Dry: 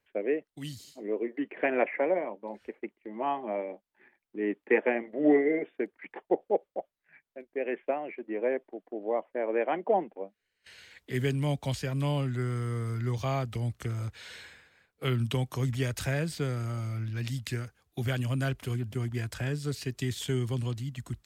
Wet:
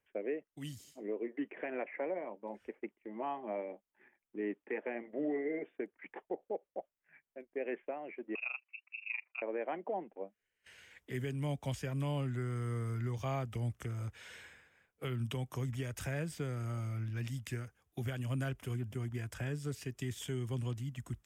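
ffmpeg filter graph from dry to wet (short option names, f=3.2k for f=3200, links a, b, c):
-filter_complex "[0:a]asettb=1/sr,asplit=3[a][b][c];[a]atrim=end=8.354[d];[b]atrim=start=8.35:end=9.42,asetpts=PTS-STARTPTS,afade=t=in:d=0.004:c=qsin,afade=t=out:st=1.066:d=0.004:c=qsin,lowpass=f=2.6k:t=q:w=0.5098,lowpass=f=2.6k:t=q:w=0.6013,lowpass=f=2.6k:t=q:w=0.9,lowpass=f=2.6k:t=q:w=2.563,afreqshift=-3000,highpass=270,tremolo=f=25:d=0.857[e];[c]atrim=start=9.416[f];[d][e]acrossfade=d=0.004:c1=hsin:c2=qsin[g];[g][f]acrossfade=d=0.004:c1=qsin:c2=hsin,equalizer=f=4.2k:t=o:w=0.31:g=-13,alimiter=limit=-23.5dB:level=0:latency=1:release=286,volume=-4.5dB"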